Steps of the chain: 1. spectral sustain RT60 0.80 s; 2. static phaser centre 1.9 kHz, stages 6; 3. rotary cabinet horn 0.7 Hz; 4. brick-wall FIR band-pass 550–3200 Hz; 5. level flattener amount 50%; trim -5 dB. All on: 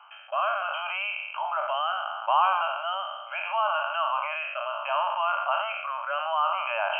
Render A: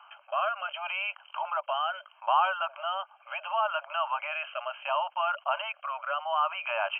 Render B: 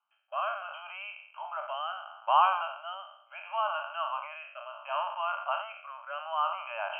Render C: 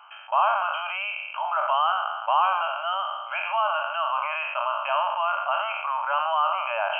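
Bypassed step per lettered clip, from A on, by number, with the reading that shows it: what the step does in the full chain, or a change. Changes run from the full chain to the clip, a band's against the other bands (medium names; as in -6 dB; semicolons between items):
1, loudness change -3.0 LU; 5, crest factor change +4.5 dB; 3, loudness change +2.5 LU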